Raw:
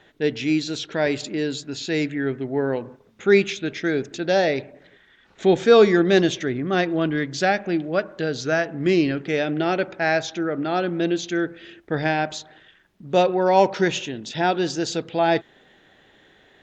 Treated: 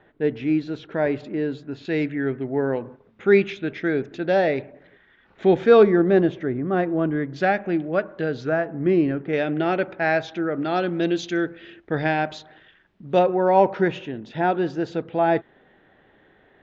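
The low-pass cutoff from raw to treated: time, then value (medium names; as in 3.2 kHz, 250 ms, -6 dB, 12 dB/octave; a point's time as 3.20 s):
1.6 kHz
from 1.85 s 2.4 kHz
from 5.83 s 1.3 kHz
from 7.36 s 2.3 kHz
from 8.49 s 1.4 kHz
from 9.33 s 2.8 kHz
from 10.62 s 5.2 kHz
from 11.49 s 3.3 kHz
from 13.19 s 1.8 kHz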